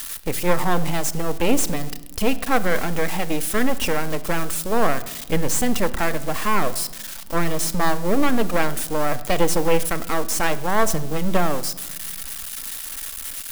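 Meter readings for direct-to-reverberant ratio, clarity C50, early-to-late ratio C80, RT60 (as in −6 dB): 11.0 dB, 17.0 dB, 18.5 dB, 1.2 s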